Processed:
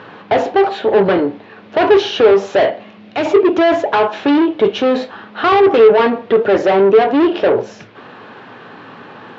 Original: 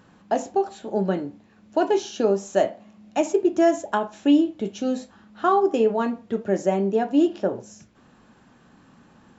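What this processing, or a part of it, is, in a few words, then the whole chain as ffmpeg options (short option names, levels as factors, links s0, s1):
overdrive pedal into a guitar cabinet: -filter_complex "[0:a]asplit=2[s0][s1];[s1]highpass=f=720:p=1,volume=25.1,asoftclip=type=tanh:threshold=0.422[s2];[s0][s2]amix=inputs=2:normalize=0,lowpass=f=3900:p=1,volume=0.501,highpass=98,equalizer=f=110:t=q:w=4:g=9,equalizer=f=210:t=q:w=4:g=-4,equalizer=f=430:t=q:w=4:g=7,lowpass=f=4000:w=0.5412,lowpass=f=4000:w=1.3066,asettb=1/sr,asplit=3[s3][s4][s5];[s3]atrim=end=2.704[s6];[s4]atrim=start=2.7:end=3.25,asetpts=PTS-STARTPTS,afade=t=in:d=0.004:c=qsin,afade=t=out:st=0.546:d=0.004:c=qsin,equalizer=f=810:t=o:w=1.9:g=-6[s7];[s5]atrim=start=3.246[s8];[s6][s7]acrossfade=d=0.004:c1=hsin:c2=qsin[s9];[s9][s8]acrossfade=d=0.004:c1=qsin:c2=hsin,volume=1.19"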